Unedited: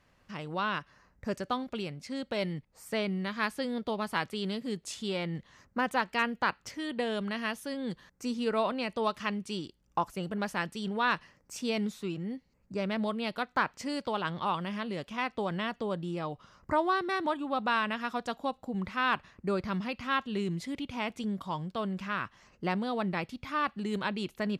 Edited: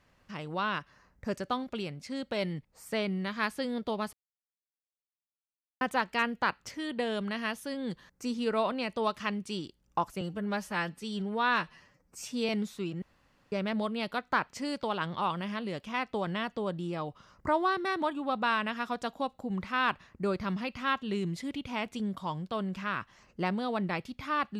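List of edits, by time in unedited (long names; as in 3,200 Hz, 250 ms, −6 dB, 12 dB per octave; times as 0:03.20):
0:04.13–0:05.81: silence
0:10.21–0:11.73: time-stretch 1.5×
0:12.26–0:12.76: fill with room tone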